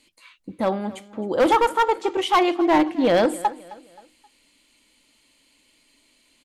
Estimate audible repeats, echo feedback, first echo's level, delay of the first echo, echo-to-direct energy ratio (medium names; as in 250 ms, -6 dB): 3, 41%, -19.5 dB, 264 ms, -18.5 dB